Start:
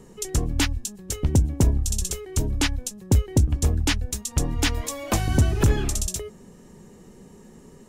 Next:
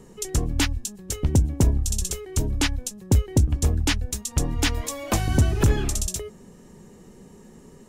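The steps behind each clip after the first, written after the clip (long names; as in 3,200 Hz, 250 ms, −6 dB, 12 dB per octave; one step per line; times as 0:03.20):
no processing that can be heard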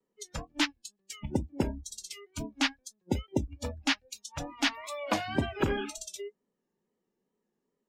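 noise reduction from a noise print of the clip's start 29 dB
tape wow and flutter 72 cents
three-way crossover with the lows and the highs turned down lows −16 dB, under 210 Hz, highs −16 dB, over 5,800 Hz
level −2 dB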